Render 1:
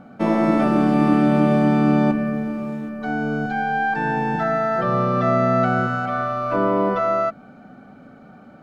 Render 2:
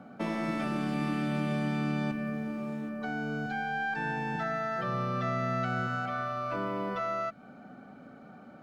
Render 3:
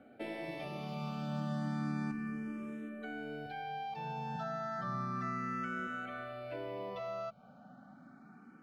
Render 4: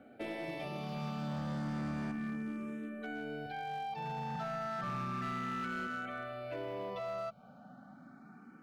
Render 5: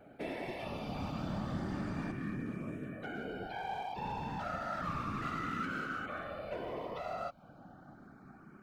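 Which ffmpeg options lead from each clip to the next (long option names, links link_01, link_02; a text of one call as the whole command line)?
ffmpeg -i in.wav -filter_complex "[0:a]lowshelf=frequency=79:gain=-10,acrossover=split=150|1700[link_01][link_02][link_03];[link_02]acompressor=threshold=-30dB:ratio=5[link_04];[link_01][link_04][link_03]amix=inputs=3:normalize=0,volume=-4.5dB" out.wav
ffmpeg -i in.wav -filter_complex "[0:a]asplit=2[link_01][link_02];[link_02]afreqshift=0.32[link_03];[link_01][link_03]amix=inputs=2:normalize=1,volume=-4.5dB" out.wav
ffmpeg -i in.wav -af "asoftclip=type=hard:threshold=-35.5dB,volume=1.5dB" out.wav
ffmpeg -i in.wav -af "afftfilt=real='hypot(re,im)*cos(2*PI*random(0))':imag='hypot(re,im)*sin(2*PI*random(1))':win_size=512:overlap=0.75,volume=6dB" out.wav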